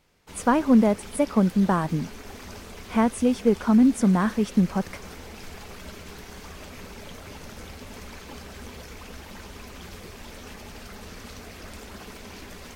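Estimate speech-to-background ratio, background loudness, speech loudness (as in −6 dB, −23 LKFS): 19.5 dB, −41.5 LKFS, −22.0 LKFS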